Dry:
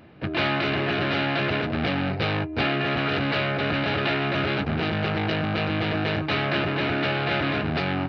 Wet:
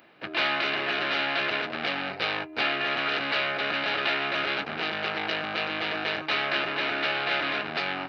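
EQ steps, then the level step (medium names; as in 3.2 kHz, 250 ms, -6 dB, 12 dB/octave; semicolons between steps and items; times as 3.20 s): high-pass 250 Hz 6 dB/octave; tilt EQ +4.5 dB/octave; treble shelf 2.6 kHz -11 dB; 0.0 dB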